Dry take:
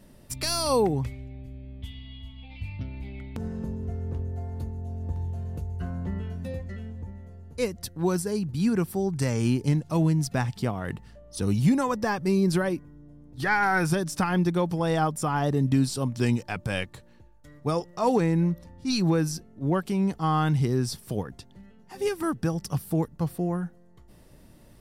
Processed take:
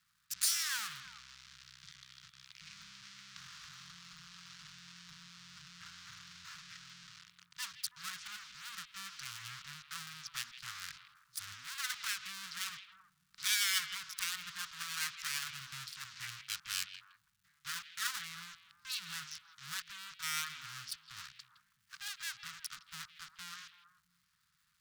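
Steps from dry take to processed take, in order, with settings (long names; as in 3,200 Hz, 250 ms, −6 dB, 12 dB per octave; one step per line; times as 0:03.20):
adaptive Wiener filter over 15 samples
treble cut that deepens with the level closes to 2,300 Hz, closed at −22.5 dBFS
in parallel at −10 dB: log-companded quantiser 2 bits
on the sum: low-pass filter 5,500 Hz 24 dB per octave
full-wave rectification
first difference
surface crackle 420 per second −69 dBFS
elliptic band-stop filter 160–1,300 Hz, stop band 70 dB
parametric band 2,200 Hz −3 dB 0.77 octaves
on a send: echo through a band-pass that steps 163 ms, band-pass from 2,800 Hz, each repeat −1.4 octaves, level −9.5 dB
on the sum: level +7.5 dB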